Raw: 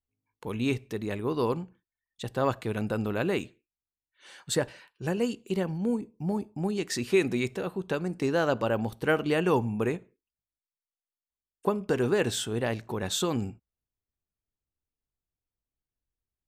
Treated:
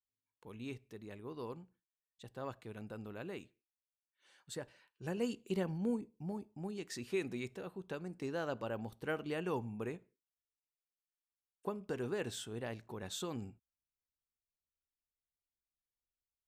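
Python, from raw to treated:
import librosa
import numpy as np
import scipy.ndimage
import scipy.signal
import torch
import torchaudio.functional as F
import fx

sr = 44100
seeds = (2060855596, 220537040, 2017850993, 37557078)

y = fx.gain(x, sr, db=fx.line((4.66, -17.0), (5.32, -7.0), (5.88, -7.0), (6.4, -13.0)))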